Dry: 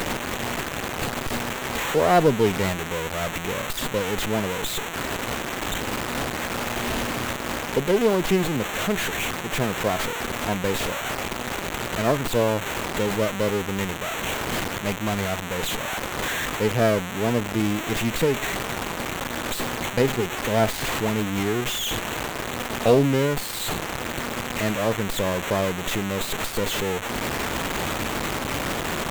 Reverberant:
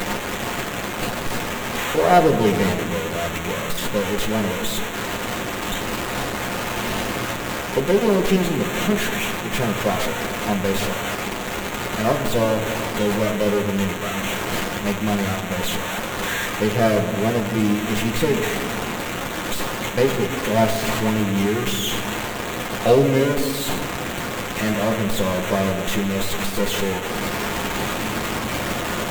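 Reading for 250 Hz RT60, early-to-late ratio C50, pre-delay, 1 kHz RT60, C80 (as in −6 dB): 3.3 s, 8.5 dB, 6 ms, 1.6 s, 10.0 dB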